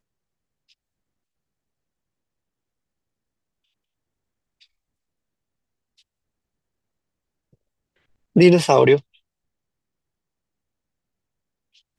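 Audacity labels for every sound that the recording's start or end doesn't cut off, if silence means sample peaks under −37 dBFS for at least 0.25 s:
8.360000	9.000000	sound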